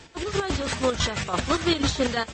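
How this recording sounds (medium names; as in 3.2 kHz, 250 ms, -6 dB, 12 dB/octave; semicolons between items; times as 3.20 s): chopped level 6 Hz, depth 60%, duty 40%; AAC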